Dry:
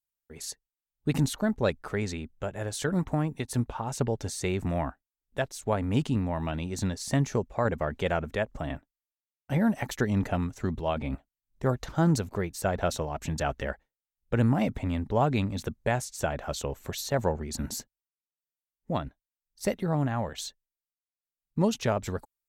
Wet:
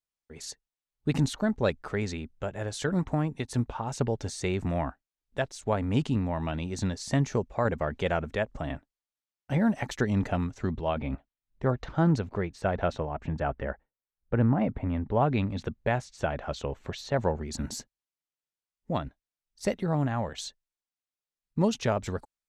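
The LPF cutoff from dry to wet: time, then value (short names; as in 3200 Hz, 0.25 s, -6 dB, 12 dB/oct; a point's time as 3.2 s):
10.38 s 7300 Hz
11 s 3400 Hz
12.74 s 3400 Hz
13.25 s 1700 Hz
14.85 s 1700 Hz
15.48 s 3800 Hz
17.12 s 3800 Hz
17.59 s 7900 Hz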